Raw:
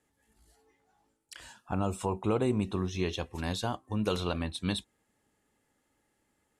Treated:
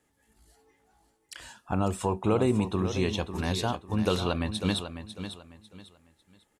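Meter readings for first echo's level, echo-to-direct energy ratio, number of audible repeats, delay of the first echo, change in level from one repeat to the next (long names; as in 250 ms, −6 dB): −10.0 dB, −9.5 dB, 3, 548 ms, −11.0 dB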